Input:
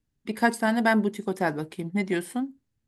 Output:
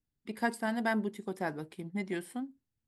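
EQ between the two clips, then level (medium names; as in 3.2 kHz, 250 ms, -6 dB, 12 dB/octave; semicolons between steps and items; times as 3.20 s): band-stop 6.4 kHz, Q 13; -9.0 dB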